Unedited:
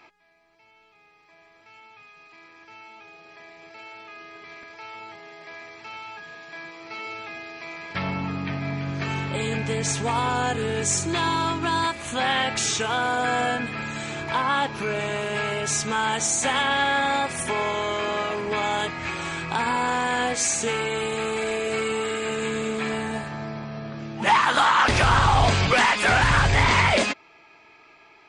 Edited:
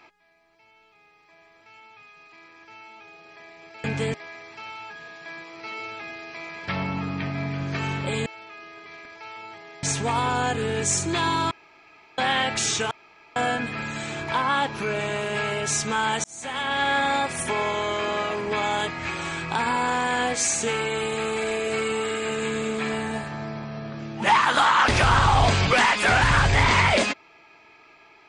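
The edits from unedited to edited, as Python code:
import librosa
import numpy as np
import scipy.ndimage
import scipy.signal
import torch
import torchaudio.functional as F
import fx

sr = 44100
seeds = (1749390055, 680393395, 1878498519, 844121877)

y = fx.edit(x, sr, fx.swap(start_s=3.84, length_s=1.57, other_s=9.53, other_length_s=0.3),
    fx.room_tone_fill(start_s=11.51, length_s=0.67),
    fx.room_tone_fill(start_s=12.91, length_s=0.45),
    fx.fade_in_span(start_s=16.24, length_s=0.68), tone=tone)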